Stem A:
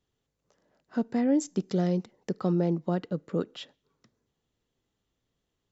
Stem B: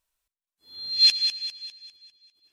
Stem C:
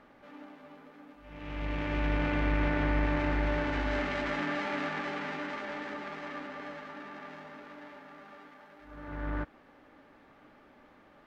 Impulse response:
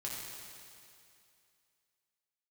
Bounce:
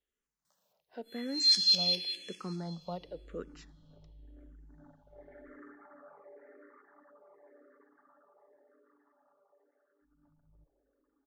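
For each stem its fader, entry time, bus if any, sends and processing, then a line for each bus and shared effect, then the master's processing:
-5.0 dB, 0.00 s, bus A, send -22 dB, none
+3.0 dB, 0.45 s, bus A, send -8 dB, high-pass 1.5 kHz
-17.0 dB, 1.20 s, no bus, send -19 dB, resonances exaggerated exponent 3; low-pass 1.6 kHz 24 dB/octave; comb 7.2 ms, depth 36%
bus A: 0.0 dB, peaking EQ 310 Hz -8 dB 0.77 oct; compression 4:1, threshold -22 dBFS, peak gain reduction 10 dB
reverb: on, RT60 2.5 s, pre-delay 4 ms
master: peaking EQ 98 Hz -13 dB 1.5 oct; barber-pole phaser -0.92 Hz

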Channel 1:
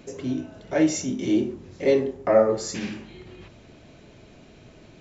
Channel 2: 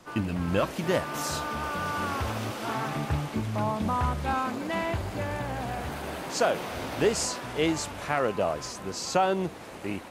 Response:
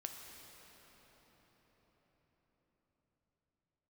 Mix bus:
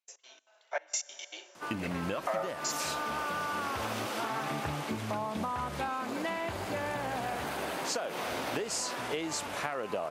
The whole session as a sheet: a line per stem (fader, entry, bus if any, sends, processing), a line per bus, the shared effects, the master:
-3.0 dB, 0.00 s, send -12.5 dB, inverse Chebyshev high-pass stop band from 220 Hz, stop band 60 dB; trance gate ".x.xx.xxxx." 193 bpm -24 dB; three bands expanded up and down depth 70%
+2.5 dB, 1.55 s, no send, high-pass 330 Hz 6 dB/octave; compression, threshold -28 dBFS, peak gain reduction 8 dB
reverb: on, RT60 5.8 s, pre-delay 5 ms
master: compression 6:1, threshold -30 dBFS, peak gain reduction 13 dB

